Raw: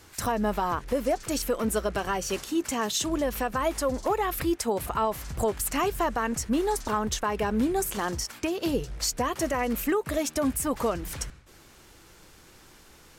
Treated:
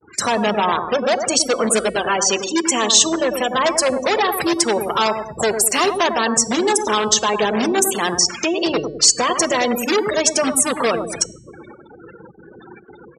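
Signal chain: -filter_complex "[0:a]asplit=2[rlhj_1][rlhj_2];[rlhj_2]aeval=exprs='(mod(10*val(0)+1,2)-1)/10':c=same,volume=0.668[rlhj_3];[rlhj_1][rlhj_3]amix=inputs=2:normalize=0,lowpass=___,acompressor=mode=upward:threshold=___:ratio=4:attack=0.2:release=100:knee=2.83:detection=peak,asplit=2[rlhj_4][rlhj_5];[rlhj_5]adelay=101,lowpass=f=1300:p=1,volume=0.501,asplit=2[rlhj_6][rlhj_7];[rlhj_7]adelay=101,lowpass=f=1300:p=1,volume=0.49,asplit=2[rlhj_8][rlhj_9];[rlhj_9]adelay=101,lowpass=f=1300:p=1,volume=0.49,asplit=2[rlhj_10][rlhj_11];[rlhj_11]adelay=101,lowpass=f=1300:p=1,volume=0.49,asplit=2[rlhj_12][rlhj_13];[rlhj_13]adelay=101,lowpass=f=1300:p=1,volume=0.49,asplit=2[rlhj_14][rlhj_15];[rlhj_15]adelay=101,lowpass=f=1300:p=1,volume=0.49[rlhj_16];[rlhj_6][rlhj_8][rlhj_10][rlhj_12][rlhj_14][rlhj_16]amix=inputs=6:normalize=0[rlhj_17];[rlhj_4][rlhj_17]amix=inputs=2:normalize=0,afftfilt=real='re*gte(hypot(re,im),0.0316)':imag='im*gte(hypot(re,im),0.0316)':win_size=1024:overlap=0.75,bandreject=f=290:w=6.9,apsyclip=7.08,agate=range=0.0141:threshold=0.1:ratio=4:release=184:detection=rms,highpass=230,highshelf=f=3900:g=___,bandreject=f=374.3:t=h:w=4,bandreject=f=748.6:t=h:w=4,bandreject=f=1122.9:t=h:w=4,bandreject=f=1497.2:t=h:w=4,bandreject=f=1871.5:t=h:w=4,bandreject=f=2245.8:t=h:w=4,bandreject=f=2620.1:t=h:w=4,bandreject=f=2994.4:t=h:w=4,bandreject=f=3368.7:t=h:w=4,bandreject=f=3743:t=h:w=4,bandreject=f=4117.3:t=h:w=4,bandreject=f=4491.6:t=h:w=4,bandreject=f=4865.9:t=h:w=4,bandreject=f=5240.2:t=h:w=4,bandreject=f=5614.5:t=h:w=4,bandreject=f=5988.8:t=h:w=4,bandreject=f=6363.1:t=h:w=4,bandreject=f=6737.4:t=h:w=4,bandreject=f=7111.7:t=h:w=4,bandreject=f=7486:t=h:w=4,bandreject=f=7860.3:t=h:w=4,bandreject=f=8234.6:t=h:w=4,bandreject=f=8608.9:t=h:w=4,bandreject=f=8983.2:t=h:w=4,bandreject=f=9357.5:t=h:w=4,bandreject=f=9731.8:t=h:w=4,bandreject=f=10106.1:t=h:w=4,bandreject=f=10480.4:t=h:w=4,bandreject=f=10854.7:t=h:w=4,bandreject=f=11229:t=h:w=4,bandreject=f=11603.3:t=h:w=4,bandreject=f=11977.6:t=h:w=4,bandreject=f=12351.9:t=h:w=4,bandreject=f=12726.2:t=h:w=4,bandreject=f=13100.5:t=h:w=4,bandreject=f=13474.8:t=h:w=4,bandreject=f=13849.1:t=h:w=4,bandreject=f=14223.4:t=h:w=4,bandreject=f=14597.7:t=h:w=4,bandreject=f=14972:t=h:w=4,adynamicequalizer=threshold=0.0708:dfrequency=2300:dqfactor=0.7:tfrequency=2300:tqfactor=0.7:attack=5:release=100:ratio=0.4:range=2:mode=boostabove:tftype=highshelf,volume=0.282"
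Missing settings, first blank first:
8900, 0.0501, 6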